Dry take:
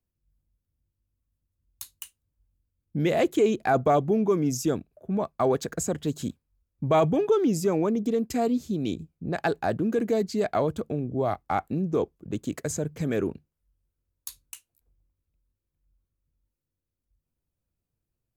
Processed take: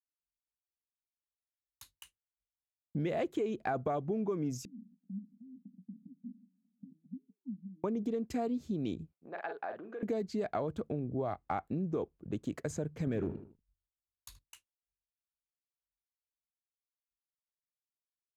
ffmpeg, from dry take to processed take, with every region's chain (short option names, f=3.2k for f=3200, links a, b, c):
-filter_complex "[0:a]asettb=1/sr,asplit=3[a][b][c];[a]atrim=end=4.654[d];[b]atrim=start=4.65:end=7.84,asetpts=PTS-STARTPTS,afade=t=in:d=0.004:c=qsin,afade=t=out:st=3.186:d=0.004:c=qsin,aeval=exprs='val(0)+0.5*0.0126*sgn(val(0))':c=same,acompressor=threshold=-40dB:ratio=2:attack=3.2:release=140:knee=1:detection=peak,asuperpass=centerf=220:order=8:qfactor=2.8[e];[c]atrim=start=7.836[f];[d][e]acrossfade=d=0.004:c1=hsin:c2=qsin[g];[g][f]acrossfade=d=0.004:c1=qsin:c2=hsin,asettb=1/sr,asplit=3[h][i][j];[h]atrim=end=9.134[k];[i]atrim=start=9.13:end=10.03,asetpts=PTS-STARTPTS,afade=t=in:d=0.004:c=qsin,afade=t=out:st=0.896:d=0.004:c=qsin,asplit=2[l][m];[m]adelay=44,volume=-7dB[n];[l][n]amix=inputs=2:normalize=0,atrim=end_sample=39690,acompressor=threshold=-27dB:ratio=6:attack=3.2:release=140:knee=1:detection=peak,highpass=570,lowpass=2.5k[o];[j]atrim=start=10.026[p];[k][o]acrossfade=d=0.004:c1=hsin:c2=qsin[q];[q][p]acrossfade=d=0.004:c1=qsin:c2=hsin,asettb=1/sr,asplit=3[r][s][t];[r]atrim=end=13.074[u];[s]atrim=start=13.07:end=14.39,asetpts=PTS-STARTPTS,afade=t=in:d=0.004:c=qsin,afade=t=out:st=1.316:d=0.004:c=qsin,lowshelf=f=220:g=10.5,volume=16dB,asoftclip=hard,volume=-16dB,asplit=2[v][w];[w]adelay=78,lowpass=f=4.5k:p=1,volume=-13.5dB,asplit=2[x][y];[y]adelay=78,lowpass=f=4.5k:p=1,volume=0.33,asplit=2[z][aa];[aa]adelay=78,lowpass=f=4.5k:p=1,volume=0.33[ab];[v][x][z][ab]amix=inputs=4:normalize=0,atrim=end_sample=58212[ac];[t]atrim=start=14.386[ad];[u][ac]acrossfade=d=0.004:c1=hsin:c2=qsin[ae];[ae][ad]acrossfade=d=0.004:c1=qsin:c2=hsin,lowpass=f=2.8k:p=1,agate=range=-33dB:threshold=-50dB:ratio=3:detection=peak,acompressor=threshold=-26dB:ratio=6,volume=-4.5dB"